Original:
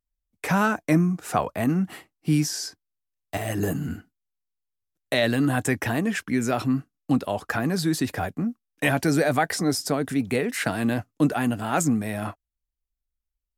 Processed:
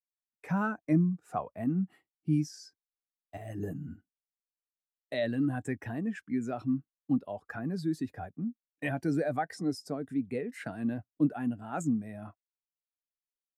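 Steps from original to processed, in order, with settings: spectral contrast expander 1.5:1; trim -6.5 dB

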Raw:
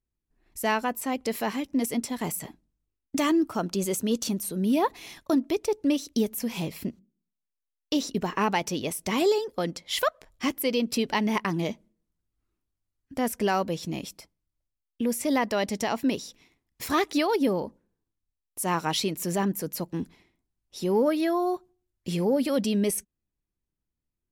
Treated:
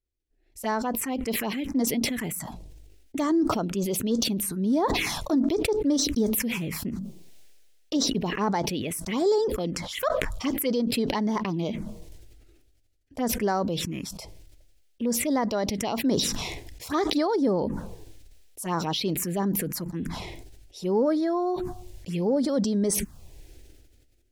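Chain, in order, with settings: treble shelf 9.6 kHz -10.5 dB; touch-sensitive phaser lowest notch 180 Hz, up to 2.7 kHz, full sweep at -22 dBFS; decay stretcher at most 32 dB/s

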